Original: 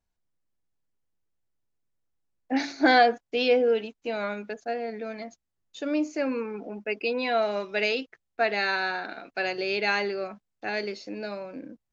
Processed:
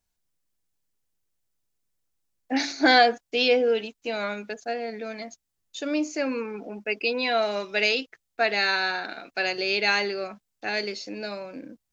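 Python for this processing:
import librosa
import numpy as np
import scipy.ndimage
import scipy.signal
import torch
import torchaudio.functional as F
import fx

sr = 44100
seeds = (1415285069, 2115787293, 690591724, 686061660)

y = fx.high_shelf(x, sr, hz=3100.0, db=10.5)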